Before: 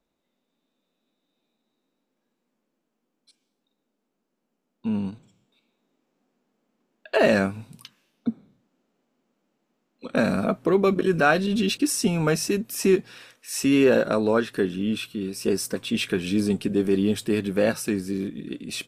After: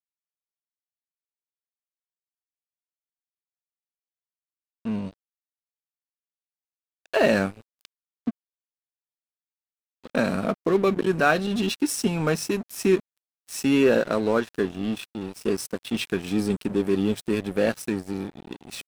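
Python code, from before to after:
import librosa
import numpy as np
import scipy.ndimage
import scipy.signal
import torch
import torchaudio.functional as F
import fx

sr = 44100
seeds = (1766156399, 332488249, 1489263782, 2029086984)

y = fx.highpass(x, sr, hz=130.0, slope=12, at=(7.71, 10.34))
y = np.sign(y) * np.maximum(np.abs(y) - 10.0 ** (-35.0 / 20.0), 0.0)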